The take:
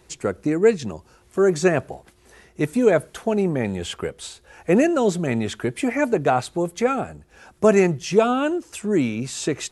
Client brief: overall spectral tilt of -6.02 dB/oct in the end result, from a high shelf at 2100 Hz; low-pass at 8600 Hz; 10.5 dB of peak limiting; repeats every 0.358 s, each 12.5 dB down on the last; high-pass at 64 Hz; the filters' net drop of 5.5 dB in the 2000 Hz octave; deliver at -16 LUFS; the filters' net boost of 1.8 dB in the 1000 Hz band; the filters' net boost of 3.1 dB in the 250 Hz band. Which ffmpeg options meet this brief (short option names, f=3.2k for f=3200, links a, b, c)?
-af "highpass=64,lowpass=8.6k,equalizer=f=250:t=o:g=4,equalizer=f=1k:t=o:g=5,equalizer=f=2k:t=o:g=-7,highshelf=f=2.1k:g=-4,alimiter=limit=-12dB:level=0:latency=1,aecho=1:1:358|716|1074:0.237|0.0569|0.0137,volume=7dB"